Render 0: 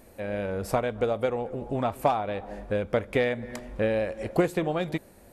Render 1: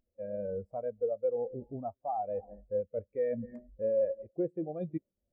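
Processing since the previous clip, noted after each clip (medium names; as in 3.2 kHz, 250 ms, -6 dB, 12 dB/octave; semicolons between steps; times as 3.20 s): reverse; compression 10:1, threshold -32 dBFS, peak gain reduction 15.5 dB; reverse; spectral contrast expander 2.5:1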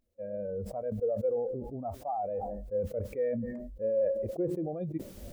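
decay stretcher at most 33 dB/s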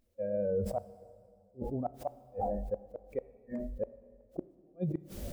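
inverted gate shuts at -27 dBFS, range -41 dB; on a send at -16 dB: reverberation RT60 2.0 s, pre-delay 10 ms; on the sum: trim +4 dB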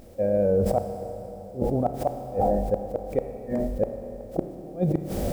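spectral levelling over time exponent 0.6; trim +8 dB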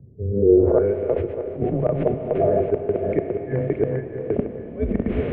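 backward echo that repeats 313 ms, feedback 41%, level -2 dB; low-pass sweep 230 Hz -> 2.4 kHz, 0.30–0.89 s; mistuned SSB -110 Hz 190–3400 Hz; trim +3 dB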